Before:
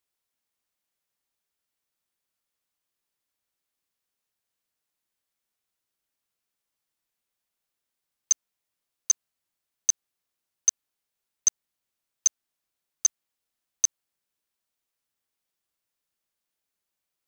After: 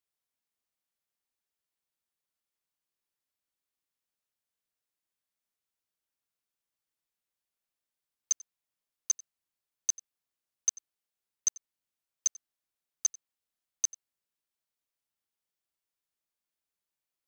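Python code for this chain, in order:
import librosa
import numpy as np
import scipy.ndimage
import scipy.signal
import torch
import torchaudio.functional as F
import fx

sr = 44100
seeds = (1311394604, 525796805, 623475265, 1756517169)

y = x + 10.0 ** (-21.5 / 20.0) * np.pad(x, (int(91 * sr / 1000.0), 0))[:len(x)]
y = y * librosa.db_to_amplitude(-6.5)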